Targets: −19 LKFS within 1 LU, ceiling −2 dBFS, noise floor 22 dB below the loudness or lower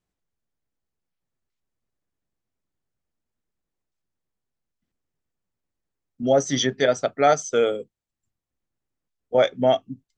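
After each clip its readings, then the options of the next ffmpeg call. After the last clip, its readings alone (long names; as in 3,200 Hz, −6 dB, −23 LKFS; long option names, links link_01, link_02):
integrated loudness −21.5 LKFS; sample peak −6.0 dBFS; target loudness −19.0 LKFS
→ -af "volume=2.5dB"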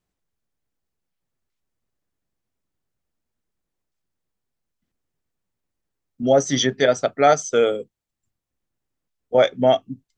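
integrated loudness −19.0 LKFS; sample peak −3.5 dBFS; background noise floor −82 dBFS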